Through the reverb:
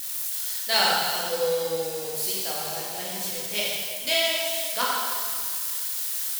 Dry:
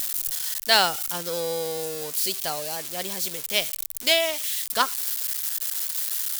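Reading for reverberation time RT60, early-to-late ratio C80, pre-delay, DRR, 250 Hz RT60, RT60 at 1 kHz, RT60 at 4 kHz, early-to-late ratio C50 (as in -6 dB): 2.0 s, 0.0 dB, 6 ms, -6.5 dB, 2.1 s, 2.0 s, 1.9 s, -2.0 dB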